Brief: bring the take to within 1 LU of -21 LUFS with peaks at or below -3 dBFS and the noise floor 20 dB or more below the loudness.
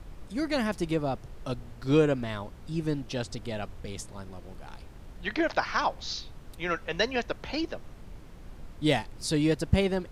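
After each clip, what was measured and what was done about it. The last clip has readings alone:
noise floor -47 dBFS; noise floor target -50 dBFS; loudness -30.0 LUFS; peak -8.5 dBFS; loudness target -21.0 LUFS
-> noise print and reduce 6 dB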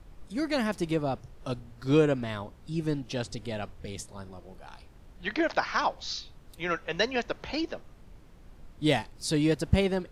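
noise floor -52 dBFS; loudness -30.0 LUFS; peak -8.5 dBFS; loudness target -21.0 LUFS
-> gain +9 dB; limiter -3 dBFS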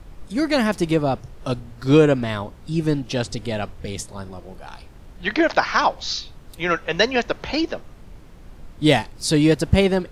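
loudness -21.5 LUFS; peak -3.0 dBFS; noise floor -43 dBFS

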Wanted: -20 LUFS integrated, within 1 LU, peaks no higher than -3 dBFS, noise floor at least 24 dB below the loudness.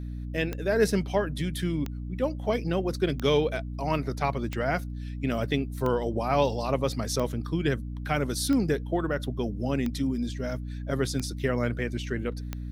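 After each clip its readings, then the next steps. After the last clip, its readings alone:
clicks 10; hum 60 Hz; harmonics up to 300 Hz; hum level -33 dBFS; loudness -28.5 LUFS; peak -10.0 dBFS; loudness target -20.0 LUFS
-> de-click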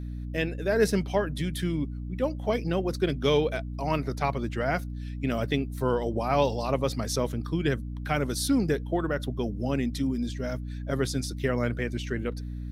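clicks 0; hum 60 Hz; harmonics up to 300 Hz; hum level -33 dBFS
-> de-hum 60 Hz, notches 5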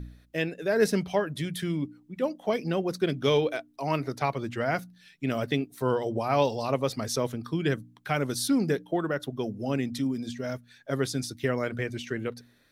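hum none; loudness -29.5 LUFS; peak -10.0 dBFS; loudness target -20.0 LUFS
-> gain +9.5 dB; limiter -3 dBFS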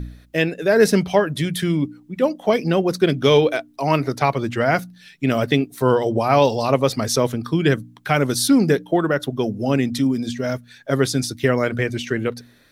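loudness -20.0 LUFS; peak -3.0 dBFS; noise floor -51 dBFS

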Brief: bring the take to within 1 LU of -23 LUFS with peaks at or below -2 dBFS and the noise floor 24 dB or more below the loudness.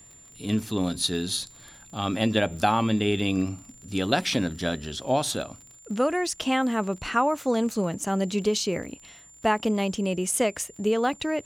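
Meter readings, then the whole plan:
ticks 42/s; steady tone 7200 Hz; tone level -49 dBFS; loudness -26.0 LUFS; peak -7.5 dBFS; loudness target -23.0 LUFS
-> de-click; notch 7200 Hz, Q 30; gain +3 dB

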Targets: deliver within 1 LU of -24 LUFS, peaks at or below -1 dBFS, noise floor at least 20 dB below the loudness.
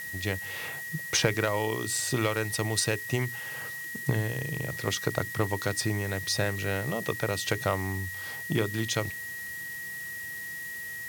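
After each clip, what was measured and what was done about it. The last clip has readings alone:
steady tone 1900 Hz; tone level -36 dBFS; noise floor -38 dBFS; noise floor target -50 dBFS; loudness -30.0 LUFS; peak -7.5 dBFS; loudness target -24.0 LUFS
-> notch 1900 Hz, Q 30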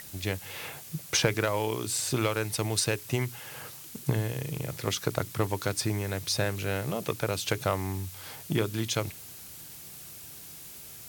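steady tone none; noise floor -46 dBFS; noise floor target -51 dBFS
-> denoiser 6 dB, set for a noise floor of -46 dBFS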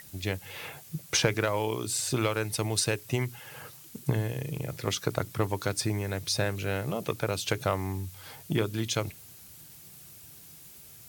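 noise floor -50 dBFS; noise floor target -51 dBFS
-> denoiser 6 dB, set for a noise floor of -50 dBFS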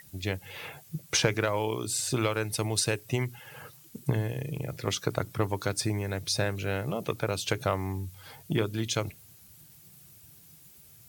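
noise floor -55 dBFS; loudness -30.5 LUFS; peak -8.0 dBFS; loudness target -24.0 LUFS
-> gain +6.5 dB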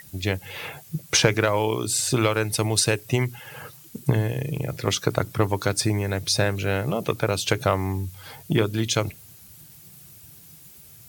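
loudness -24.0 LUFS; peak -1.5 dBFS; noise floor -48 dBFS

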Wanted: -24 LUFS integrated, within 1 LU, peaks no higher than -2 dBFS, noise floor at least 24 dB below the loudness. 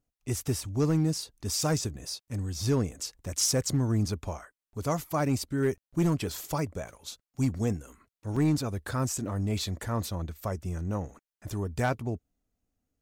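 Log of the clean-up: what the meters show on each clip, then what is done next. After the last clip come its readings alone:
clipped 0.5%; flat tops at -19.0 dBFS; dropouts 1; longest dropout 4.4 ms; loudness -30.5 LUFS; peak -19.0 dBFS; loudness target -24.0 LUFS
-> clip repair -19 dBFS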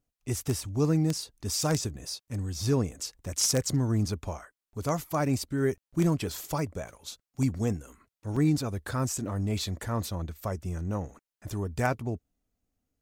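clipped 0.0%; dropouts 1; longest dropout 4.4 ms
-> interpolate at 8.36, 4.4 ms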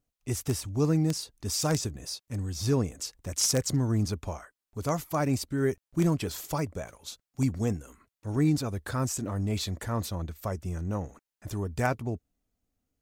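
dropouts 0; loudness -30.0 LUFS; peak -10.0 dBFS; loudness target -24.0 LUFS
-> gain +6 dB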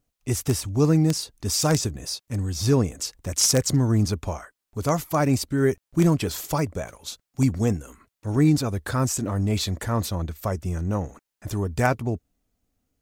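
loudness -24.0 LUFS; peak -4.0 dBFS; noise floor -84 dBFS

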